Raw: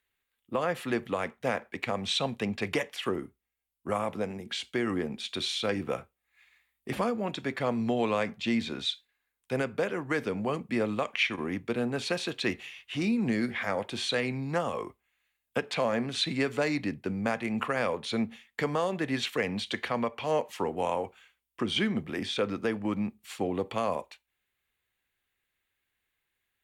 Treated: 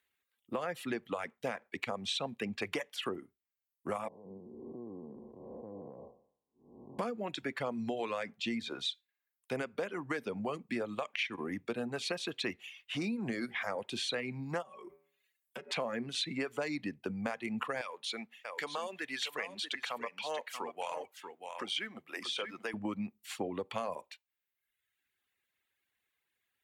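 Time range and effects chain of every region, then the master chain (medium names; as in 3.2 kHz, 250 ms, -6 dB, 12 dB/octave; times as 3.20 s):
4.08–6.99 s: spectral blur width 375 ms + Chebyshev low-pass 1.1 kHz, order 10 + compression 2.5:1, threshold -40 dBFS
14.62–15.72 s: comb 5.3 ms, depth 93% + de-hum 81.43 Hz, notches 31 + compression 12:1, threshold -40 dBFS
17.81–22.74 s: high-pass 1.2 kHz 6 dB/octave + delay 635 ms -8 dB
whole clip: reverb removal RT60 1 s; high-pass 160 Hz 6 dB/octave; compression 3:1, threshold -34 dBFS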